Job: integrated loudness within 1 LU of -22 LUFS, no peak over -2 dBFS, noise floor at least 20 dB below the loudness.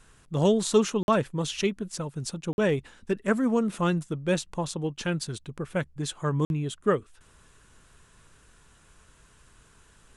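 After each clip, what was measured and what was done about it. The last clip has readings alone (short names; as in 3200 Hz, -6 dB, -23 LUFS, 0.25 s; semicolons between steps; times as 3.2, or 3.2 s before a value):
dropouts 3; longest dropout 51 ms; loudness -28.0 LUFS; peak -10.0 dBFS; loudness target -22.0 LUFS
-> interpolate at 1.03/2.53/6.45, 51 ms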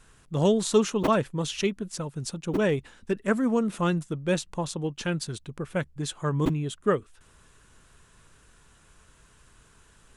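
dropouts 0; loudness -27.5 LUFS; peak -10.0 dBFS; loudness target -22.0 LUFS
-> gain +5.5 dB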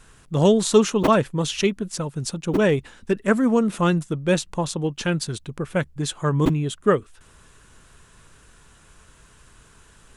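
loudness -22.0 LUFS; peak -4.5 dBFS; noise floor -53 dBFS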